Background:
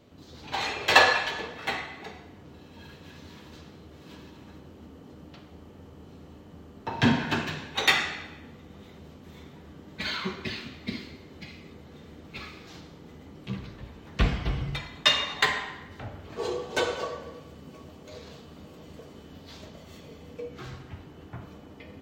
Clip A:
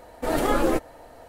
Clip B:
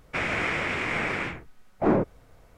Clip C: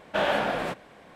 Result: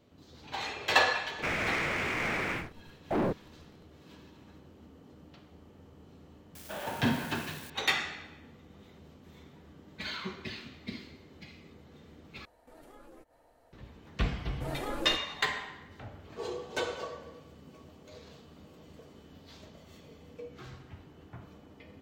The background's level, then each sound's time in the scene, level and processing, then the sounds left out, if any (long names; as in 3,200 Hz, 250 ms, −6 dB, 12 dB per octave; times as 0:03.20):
background −6.5 dB
0:01.29: mix in B −13.5 dB + leveller curve on the samples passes 3
0:06.55: mix in C −15.5 dB + spike at every zero crossing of −22 dBFS
0:12.45: overwrite with A −17.5 dB + downward compressor 2.5 to 1, threshold −40 dBFS
0:14.38: mix in A −14.5 dB